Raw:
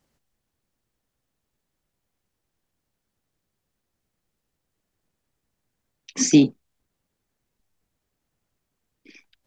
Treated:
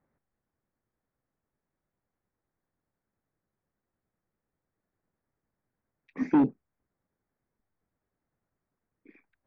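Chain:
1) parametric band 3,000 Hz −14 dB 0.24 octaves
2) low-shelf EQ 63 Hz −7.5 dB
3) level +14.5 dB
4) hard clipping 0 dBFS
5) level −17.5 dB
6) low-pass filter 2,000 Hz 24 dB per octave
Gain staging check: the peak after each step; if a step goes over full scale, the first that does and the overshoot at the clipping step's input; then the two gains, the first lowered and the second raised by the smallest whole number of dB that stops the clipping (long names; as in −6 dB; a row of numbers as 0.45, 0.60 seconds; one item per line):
−4.0, −4.5, +10.0, 0.0, −17.5, −16.5 dBFS
step 3, 10.0 dB
step 3 +4.5 dB, step 5 −7.5 dB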